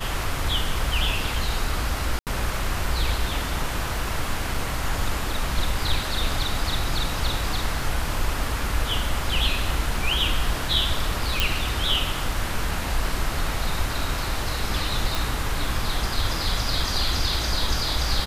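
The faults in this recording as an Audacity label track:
2.190000	2.270000	dropout 78 ms
4.540000	4.540000	dropout 3 ms
11.400000	11.400000	pop
15.150000	15.150000	pop

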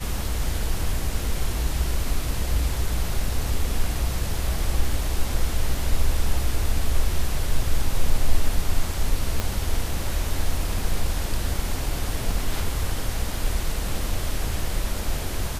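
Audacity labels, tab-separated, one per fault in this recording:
9.400000	9.400000	pop -10 dBFS

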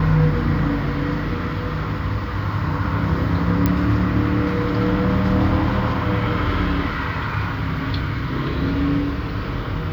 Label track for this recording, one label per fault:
3.660000	3.660000	pop -6 dBFS

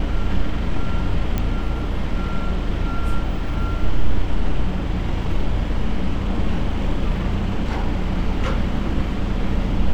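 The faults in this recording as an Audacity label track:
1.380000	1.380000	pop -10 dBFS

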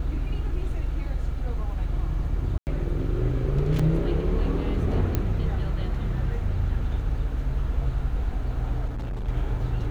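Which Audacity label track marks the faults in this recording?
2.580000	2.670000	dropout 89 ms
3.790000	3.790000	dropout 4.7 ms
5.150000	5.150000	pop -11 dBFS
8.870000	9.290000	clipped -27.5 dBFS

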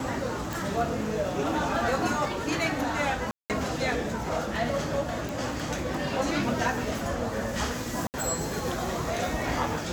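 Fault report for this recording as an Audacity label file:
0.530000	0.530000	pop
3.310000	3.500000	dropout 188 ms
5.290000	5.290000	pop
8.070000	8.140000	dropout 69 ms

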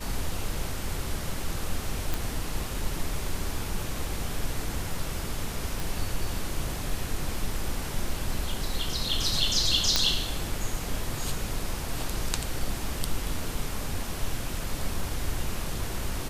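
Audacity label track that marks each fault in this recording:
2.140000	2.140000	pop
5.800000	5.800000	pop
9.960000	9.960000	pop -5 dBFS

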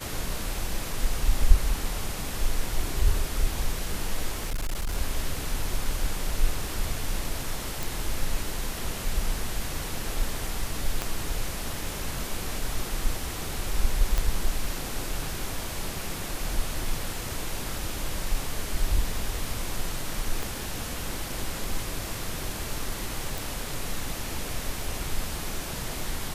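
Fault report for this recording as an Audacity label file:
4.360000	4.970000	clipped -24.5 dBFS
7.830000	7.830000	pop
11.020000	11.020000	pop -12 dBFS
14.180000	14.180000	pop
20.430000	20.430000	pop
23.380000	23.380000	pop

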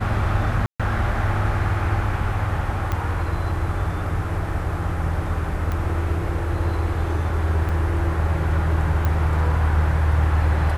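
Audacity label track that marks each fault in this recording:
0.660000	0.800000	dropout 136 ms
2.920000	2.920000	pop -12 dBFS
5.720000	5.720000	pop -15 dBFS
7.690000	7.690000	dropout 3.6 ms
9.050000	9.050000	pop -11 dBFS

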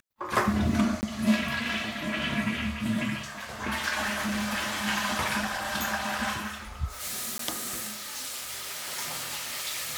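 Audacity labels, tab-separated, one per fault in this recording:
1.010000	1.030000	dropout 19 ms
4.010000	4.880000	clipped -26 dBFS
7.380000	7.390000	dropout 13 ms

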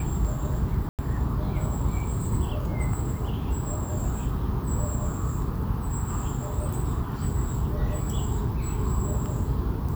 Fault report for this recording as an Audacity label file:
0.890000	0.990000	dropout 98 ms

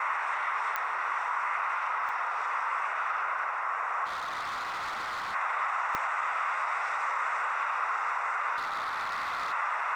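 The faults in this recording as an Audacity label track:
0.760000	0.760000	pop -16 dBFS
2.090000	2.090000	dropout 2.1 ms
4.050000	5.350000	clipped -32 dBFS
5.950000	5.950000	pop -16 dBFS
8.560000	9.530000	clipped -29.5 dBFS

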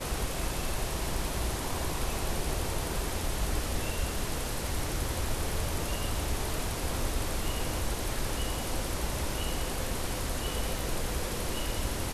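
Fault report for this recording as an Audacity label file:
10.790000	10.790000	pop

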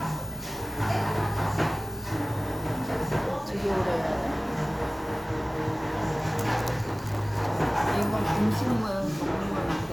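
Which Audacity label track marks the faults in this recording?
6.810000	7.270000	clipped -25.5 dBFS

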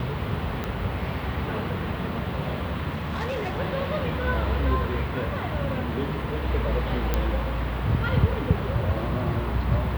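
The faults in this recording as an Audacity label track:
0.640000	0.640000	pop -16 dBFS
2.900000	3.600000	clipped -25 dBFS
7.140000	7.140000	pop -10 dBFS

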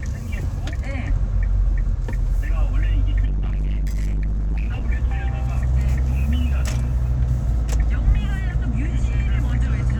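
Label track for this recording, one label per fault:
3.250000	4.860000	clipped -19.5 dBFS

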